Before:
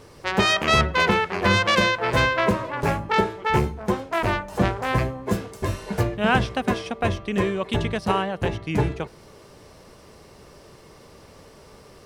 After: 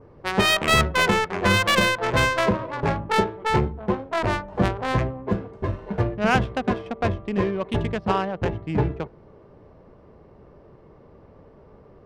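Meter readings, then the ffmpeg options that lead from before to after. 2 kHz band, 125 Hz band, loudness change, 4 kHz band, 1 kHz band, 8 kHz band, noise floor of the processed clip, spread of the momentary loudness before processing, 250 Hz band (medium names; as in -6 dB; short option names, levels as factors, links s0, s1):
-0.5 dB, 0.0 dB, 0.0 dB, 0.0 dB, -0.5 dB, +2.5 dB, -51 dBFS, 9 LU, 0.0 dB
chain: -af "adynamicequalizer=threshold=0.0178:dfrequency=3500:dqfactor=2.3:tfrequency=3500:tqfactor=2.3:attack=5:release=100:ratio=0.375:range=2:mode=boostabove:tftype=bell,adynamicsmooth=sensitivity=1:basefreq=1100"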